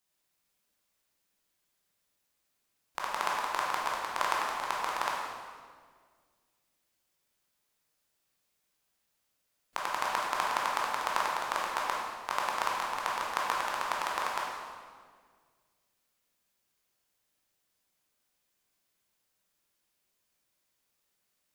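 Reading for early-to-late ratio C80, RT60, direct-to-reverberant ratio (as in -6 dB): 1.5 dB, 1.8 s, -4.0 dB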